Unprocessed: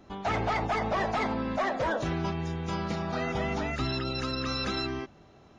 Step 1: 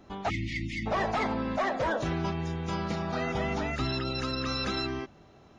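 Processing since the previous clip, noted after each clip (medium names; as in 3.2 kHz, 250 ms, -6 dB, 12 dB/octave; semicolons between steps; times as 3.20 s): spectral selection erased 0.30–0.87 s, 350–1800 Hz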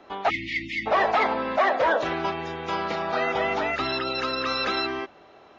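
three-band isolator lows -19 dB, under 350 Hz, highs -18 dB, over 4.6 kHz; trim +8.5 dB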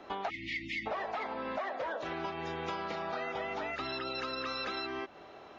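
compression 10:1, threshold -34 dBFS, peak gain reduction 17 dB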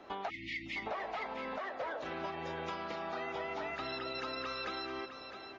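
delay 660 ms -9 dB; trim -3 dB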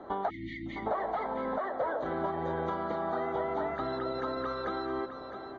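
boxcar filter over 17 samples; trim +9 dB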